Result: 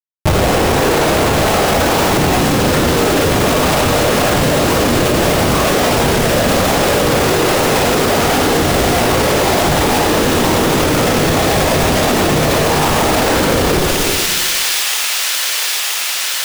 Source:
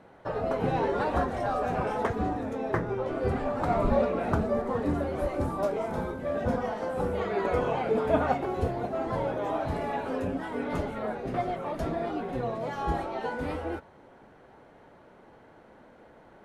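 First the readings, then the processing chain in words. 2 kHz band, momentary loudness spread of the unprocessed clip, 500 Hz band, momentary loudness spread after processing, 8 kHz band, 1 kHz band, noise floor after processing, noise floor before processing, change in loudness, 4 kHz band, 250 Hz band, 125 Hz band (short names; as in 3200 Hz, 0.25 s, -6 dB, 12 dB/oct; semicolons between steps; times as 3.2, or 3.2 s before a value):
+22.5 dB, 6 LU, +15.0 dB, 1 LU, n/a, +15.5 dB, -18 dBFS, -55 dBFS, +17.0 dB, +34.0 dB, +16.5 dB, +17.5 dB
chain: AGC gain up to 11 dB; in parallel at -4 dB: soft clip -19 dBFS, distortion -9 dB; on the sum: whisperiser; Schmitt trigger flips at -24 dBFS; on a send: thin delay 0.973 s, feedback 71%, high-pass 2900 Hz, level -5 dB; on the sum: plate-style reverb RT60 1.4 s, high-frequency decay 1×, DRR -0.5 dB; maximiser +12.5 dB; fast leveller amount 50%; gain -6 dB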